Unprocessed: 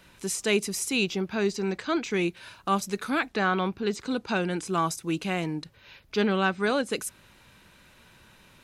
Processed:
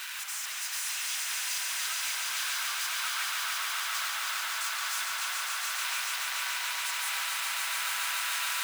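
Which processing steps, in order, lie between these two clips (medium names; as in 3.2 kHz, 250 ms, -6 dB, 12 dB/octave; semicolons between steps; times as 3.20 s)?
one-bit comparator; high-pass 1.2 kHz 24 dB/octave; ever faster or slower copies 167 ms, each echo -3 st, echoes 2, each echo -6 dB; on a send: echo with a slow build-up 143 ms, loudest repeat 5, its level -4.5 dB; on the sum: spring tank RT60 3.8 s, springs 36 ms, chirp 75 ms, DRR 4 dB; trim -8 dB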